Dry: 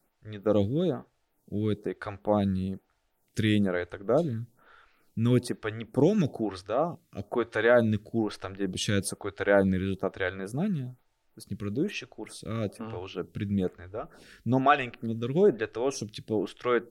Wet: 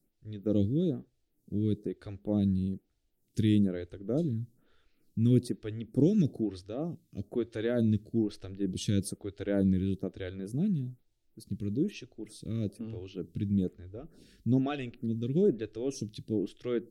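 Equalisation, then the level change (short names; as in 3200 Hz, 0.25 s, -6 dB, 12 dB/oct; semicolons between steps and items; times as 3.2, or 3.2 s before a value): EQ curve 320 Hz 0 dB, 1000 Hz -23 dB, 3900 Hz -6 dB; 0.0 dB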